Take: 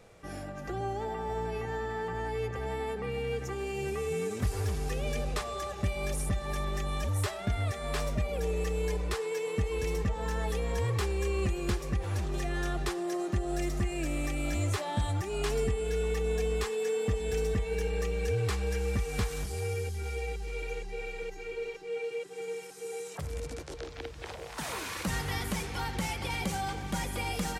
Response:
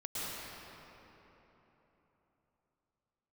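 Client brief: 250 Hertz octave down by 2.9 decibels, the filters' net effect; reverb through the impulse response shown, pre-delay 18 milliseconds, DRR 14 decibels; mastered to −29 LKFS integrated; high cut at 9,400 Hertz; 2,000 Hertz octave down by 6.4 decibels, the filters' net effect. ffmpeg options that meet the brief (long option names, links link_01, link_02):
-filter_complex "[0:a]lowpass=9400,equalizer=frequency=250:width_type=o:gain=-4.5,equalizer=frequency=2000:width_type=o:gain=-8,asplit=2[link_01][link_02];[1:a]atrim=start_sample=2205,adelay=18[link_03];[link_02][link_03]afir=irnorm=-1:irlink=0,volume=-18dB[link_04];[link_01][link_04]amix=inputs=2:normalize=0,volume=5.5dB"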